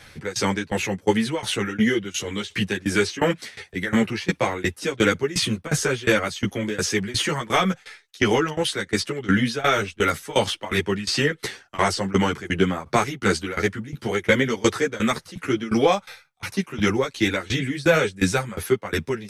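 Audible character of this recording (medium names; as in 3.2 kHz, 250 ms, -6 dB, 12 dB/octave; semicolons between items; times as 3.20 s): tremolo saw down 2.8 Hz, depth 95%; a shimmering, thickened sound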